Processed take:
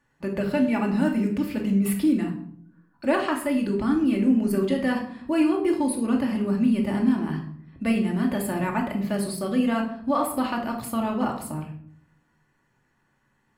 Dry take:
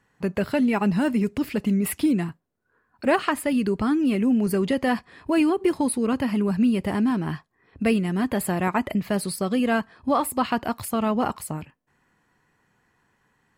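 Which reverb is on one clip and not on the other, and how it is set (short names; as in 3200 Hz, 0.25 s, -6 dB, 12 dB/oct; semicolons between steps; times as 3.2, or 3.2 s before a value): shoebox room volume 1000 m³, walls furnished, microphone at 2.5 m; gain -5.5 dB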